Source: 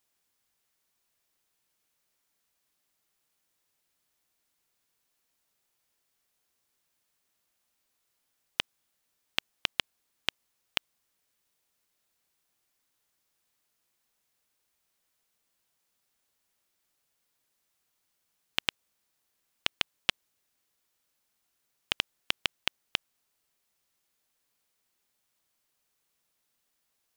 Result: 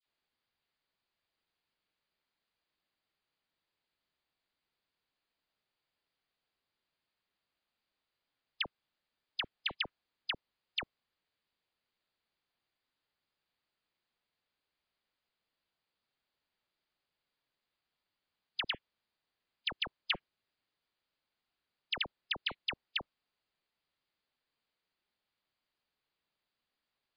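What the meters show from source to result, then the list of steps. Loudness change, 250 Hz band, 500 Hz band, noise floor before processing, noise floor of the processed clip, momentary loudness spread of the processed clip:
-5.0 dB, -4.5 dB, -4.5 dB, -78 dBFS, under -85 dBFS, 5 LU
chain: dispersion lows, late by 60 ms, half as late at 1600 Hz; gain -4 dB; MP3 48 kbps 11025 Hz

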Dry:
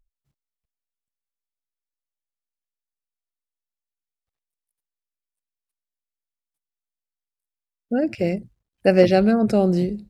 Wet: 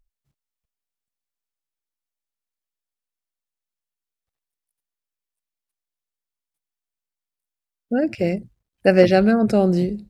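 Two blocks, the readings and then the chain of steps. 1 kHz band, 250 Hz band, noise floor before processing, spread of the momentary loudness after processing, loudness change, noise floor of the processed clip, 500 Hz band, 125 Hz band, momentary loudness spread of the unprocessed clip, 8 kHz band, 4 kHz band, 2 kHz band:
+1.5 dB, +1.0 dB, under -85 dBFS, 10 LU, +1.0 dB, under -85 dBFS, +1.0 dB, +1.0 dB, 10 LU, n/a, +1.5 dB, +3.5 dB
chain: dynamic EQ 1600 Hz, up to +4 dB, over -36 dBFS, Q 2.2; gain +1 dB

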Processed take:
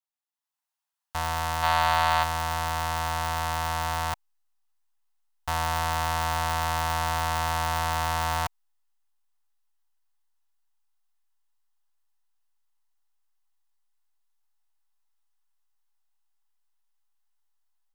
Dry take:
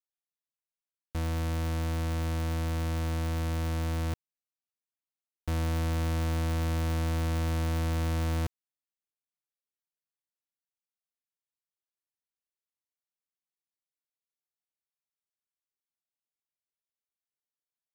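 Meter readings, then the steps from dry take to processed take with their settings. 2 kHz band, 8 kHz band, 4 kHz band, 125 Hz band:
+11.5 dB, +9.5 dB, +10.5 dB, -4.5 dB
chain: in parallel at -10 dB: backlash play -47.5 dBFS; on the sum: resonant low shelf 570 Hz -13.5 dB, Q 3; spectral gain 1.63–2.23, 530–4800 Hz +7 dB; notch 2300 Hz, Q 12; AGC gain up to 9.5 dB; gain -2.5 dB

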